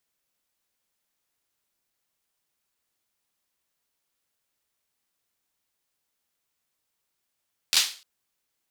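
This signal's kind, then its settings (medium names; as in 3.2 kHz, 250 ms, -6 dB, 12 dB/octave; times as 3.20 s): hand clap length 0.30 s, apart 12 ms, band 3.9 kHz, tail 0.37 s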